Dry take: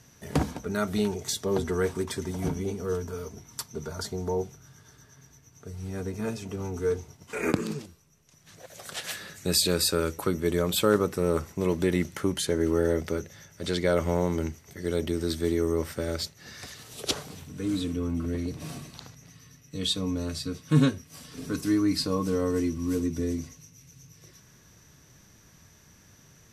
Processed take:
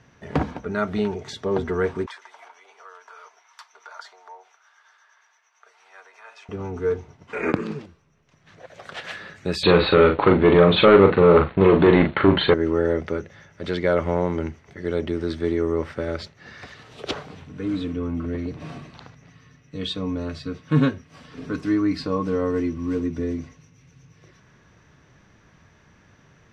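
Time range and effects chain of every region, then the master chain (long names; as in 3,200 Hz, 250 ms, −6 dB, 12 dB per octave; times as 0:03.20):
0:02.06–0:06.49: downward compressor, threshold −32 dBFS + high-pass filter 820 Hz 24 dB per octave
0:09.63–0:12.54: leveller curve on the samples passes 3 + Chebyshev low-pass filter 4,300 Hz, order 8 + double-tracking delay 41 ms −5.5 dB
whole clip: low-pass filter 2,400 Hz 12 dB per octave; low-shelf EQ 390 Hz −5 dB; level +6 dB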